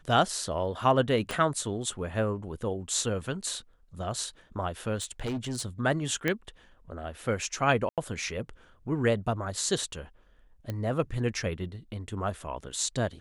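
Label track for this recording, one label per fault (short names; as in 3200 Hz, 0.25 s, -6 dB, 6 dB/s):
1.310000	1.310000	pop -17 dBFS
4.960000	5.660000	clipped -28.5 dBFS
6.280000	6.280000	pop -13 dBFS
7.890000	7.980000	gap 87 ms
10.700000	10.700000	pop -20 dBFS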